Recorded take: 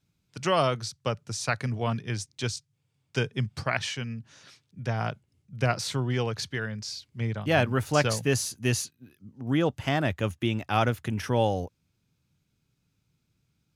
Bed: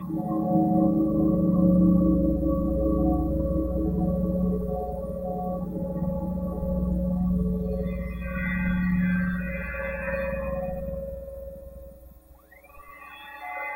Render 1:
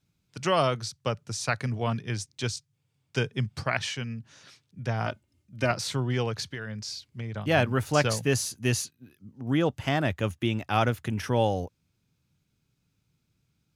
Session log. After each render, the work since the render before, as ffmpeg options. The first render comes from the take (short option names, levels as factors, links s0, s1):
-filter_complex "[0:a]asettb=1/sr,asplit=3[s0][s1][s2];[s0]atrim=end=5.064[s3];[s1]atrim=start=5.06:end=5.71,asetpts=PTS-STARTPTS,afade=t=in:d=0.004:c=qsin,afade=t=out:st=0.646:d=0.004:c=qsin,aecho=1:1:3.3:0.65,atrim=end_sample=28665[s4];[s2]atrim=start=5.706[s5];[s3][s4]acrossfade=d=0.004:c1=hsin:c2=qsin[s6];[s6][s5]acrossfade=d=0.004:c1=qsin:c2=hsin,asettb=1/sr,asplit=3[s7][s8][s9];[s7]atrim=end=6.424[s10];[s8]atrim=start=6.42:end=7.34,asetpts=PTS-STARTPTS,afade=t=in:d=0.004:c=qsin,afade=t=out:st=0.916:d=0.004:c=qsin,acompressor=threshold=0.0282:ratio=5:attack=3.2:release=140:knee=1:detection=peak[s11];[s9]atrim=start=7.336[s12];[s10][s11]acrossfade=d=0.004:c1=hsin:c2=qsin[s13];[s13][s12]acrossfade=d=0.004:c1=qsin:c2=hsin"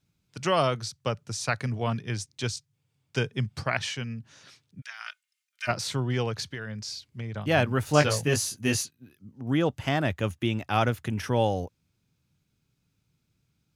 -filter_complex "[0:a]asplit=3[s0][s1][s2];[s0]afade=t=out:st=4.8:d=0.02[s3];[s1]highpass=f=1500:w=0.5412,highpass=f=1500:w=1.3066,afade=t=in:st=4.8:d=0.02,afade=t=out:st=5.67:d=0.02[s4];[s2]afade=t=in:st=5.67:d=0.02[s5];[s3][s4][s5]amix=inputs=3:normalize=0,asettb=1/sr,asplit=3[s6][s7][s8];[s6]atrim=end=7.854[s9];[s7]atrim=start=7.85:end=8.83,asetpts=PTS-STARTPTS,afade=t=in:d=0.004:c=qsin,afade=t=out:st=0.976:d=0.004:c=qsin,asplit=2[s10][s11];[s11]adelay=20,volume=0.631[s12];[s10][s12]amix=inputs=2:normalize=0,atrim=end_sample=43218[s13];[s8]atrim=start=8.826[s14];[s9][s13]acrossfade=d=0.004:c1=hsin:c2=qsin[s15];[s15][s14]acrossfade=d=0.004:c1=qsin:c2=hsin"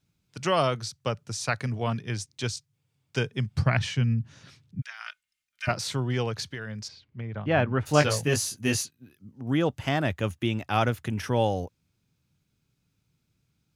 -filter_complex "[0:a]asettb=1/sr,asplit=3[s0][s1][s2];[s0]atrim=end=3.554[s3];[s1]atrim=start=3.55:end=5.69,asetpts=PTS-STARTPTS,afade=t=in:d=0.004:c=qsin,afade=t=out:st=2.136:d=0.004:c=qsin,bass=f=250:g=13,treble=f=4000:g=-3[s4];[s2]atrim=start=5.686[s5];[s3][s4]acrossfade=d=0.004:c1=hsin:c2=qsin[s6];[s6][s5]acrossfade=d=0.004:c1=qsin:c2=hsin,asplit=3[s7][s8][s9];[s7]afade=t=out:st=6.87:d=0.02[s10];[s8]lowpass=2400,afade=t=in:st=6.87:d=0.02,afade=t=out:st=7.85:d=0.02[s11];[s9]afade=t=in:st=7.85:d=0.02[s12];[s10][s11][s12]amix=inputs=3:normalize=0"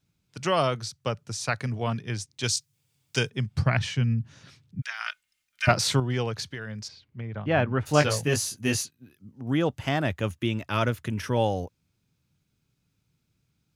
-filter_complex "[0:a]asettb=1/sr,asplit=3[s0][s1][s2];[s0]atrim=end=2.434[s3];[s1]atrim=start=2.43:end=3.3,asetpts=PTS-STARTPTS,afade=t=in:d=0.004:c=qsin,afade=t=out:st=0.866:d=0.004:c=qsin,highshelf=f=3000:g=12[s4];[s2]atrim=start=3.296[s5];[s3][s4]acrossfade=d=0.004:c1=hsin:c2=qsin[s6];[s6][s5]acrossfade=d=0.004:c1=qsin:c2=hsin,asettb=1/sr,asplit=3[s7][s8][s9];[s7]atrim=end=4.834[s10];[s8]atrim=start=4.83:end=6,asetpts=PTS-STARTPTS,afade=t=in:d=0.004:c=qsin,afade=t=out:st=1.166:d=0.004:c=qsin,acontrast=76[s11];[s9]atrim=start=5.996[s12];[s10][s11]acrossfade=d=0.004:c1=hsin:c2=qsin[s13];[s13][s12]acrossfade=d=0.004:c1=qsin:c2=hsin,asettb=1/sr,asplit=3[s14][s15][s16];[s14]atrim=end=10.314[s17];[s15]atrim=start=10.31:end=11.37,asetpts=PTS-STARTPTS,afade=t=in:d=0.004:c=qsin,afade=t=out:st=1.056:d=0.004:c=qsin,asuperstop=centerf=770:order=4:qfactor=5.4[s18];[s16]atrim=start=11.366[s19];[s17][s18]acrossfade=d=0.004:c1=hsin:c2=qsin[s20];[s20][s19]acrossfade=d=0.004:c1=qsin:c2=hsin"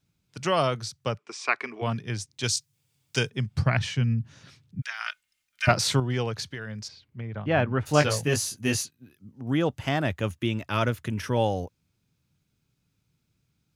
-filter_complex "[0:a]asplit=3[s0][s1][s2];[s0]afade=t=out:st=1.17:d=0.02[s3];[s1]highpass=f=300:w=0.5412,highpass=f=300:w=1.3066,equalizer=f=380:t=q:w=4:g=7,equalizer=f=540:t=q:w=4:g=-7,equalizer=f=1100:t=q:w=4:g=9,equalizer=f=2300:t=q:w=4:g=10,equalizer=f=4200:t=q:w=4:g=-6,equalizer=f=6400:t=q:w=4:g=-7,lowpass=f=7000:w=0.5412,lowpass=f=7000:w=1.3066,afade=t=in:st=1.17:d=0.02,afade=t=out:st=1.81:d=0.02[s4];[s2]afade=t=in:st=1.81:d=0.02[s5];[s3][s4][s5]amix=inputs=3:normalize=0"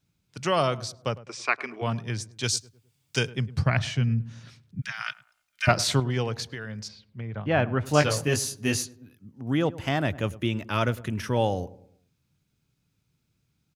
-filter_complex "[0:a]asplit=2[s0][s1];[s1]adelay=104,lowpass=f=1100:p=1,volume=0.141,asplit=2[s2][s3];[s3]adelay=104,lowpass=f=1100:p=1,volume=0.47,asplit=2[s4][s5];[s5]adelay=104,lowpass=f=1100:p=1,volume=0.47,asplit=2[s6][s7];[s7]adelay=104,lowpass=f=1100:p=1,volume=0.47[s8];[s0][s2][s4][s6][s8]amix=inputs=5:normalize=0"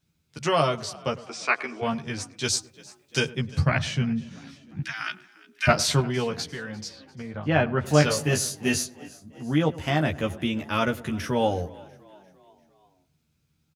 -filter_complex "[0:a]asplit=2[s0][s1];[s1]adelay=13,volume=0.708[s2];[s0][s2]amix=inputs=2:normalize=0,asplit=5[s3][s4][s5][s6][s7];[s4]adelay=347,afreqshift=46,volume=0.075[s8];[s5]adelay=694,afreqshift=92,volume=0.0398[s9];[s6]adelay=1041,afreqshift=138,volume=0.0211[s10];[s7]adelay=1388,afreqshift=184,volume=0.0112[s11];[s3][s8][s9][s10][s11]amix=inputs=5:normalize=0"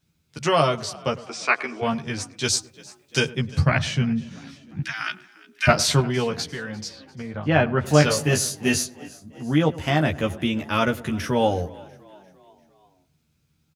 -af "volume=1.41,alimiter=limit=0.708:level=0:latency=1"